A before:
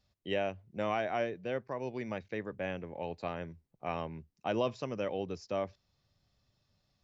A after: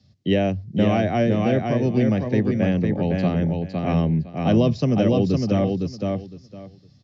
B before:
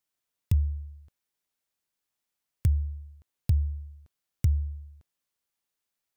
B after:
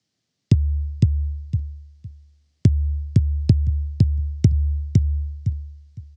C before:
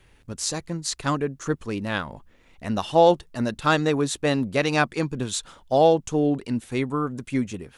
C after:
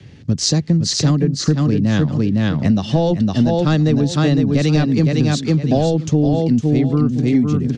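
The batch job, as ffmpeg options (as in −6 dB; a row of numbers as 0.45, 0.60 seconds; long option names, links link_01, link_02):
-filter_complex "[0:a]highpass=frequency=120:width=0.5412,highpass=frequency=120:width=1.3066,equalizer=frequency=130:width_type=q:width=4:gain=-6,equalizer=frequency=190:width_type=q:width=4:gain=-4,equalizer=frequency=970:width_type=q:width=4:gain=-8,equalizer=frequency=1400:width_type=q:width=4:gain=-6,equalizer=frequency=2500:width_type=q:width=4:gain=-4,equalizer=frequency=3600:width_type=q:width=4:gain=-3,lowpass=frequency=5200:width=0.5412,lowpass=frequency=5200:width=1.3066,aecho=1:1:509|1018|1527:0.631|0.12|0.0228,apsyclip=12.5dB,acrossover=split=260|530|1600[link_01][link_02][link_03][link_04];[link_01]acontrast=82[link_05];[link_05][link_02][link_03][link_04]amix=inputs=4:normalize=0,bass=frequency=250:gain=15,treble=frequency=4000:gain=10,acompressor=threshold=-10dB:ratio=6,volume=-2.5dB"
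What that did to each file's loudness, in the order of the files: +15.5, +8.0, +7.5 LU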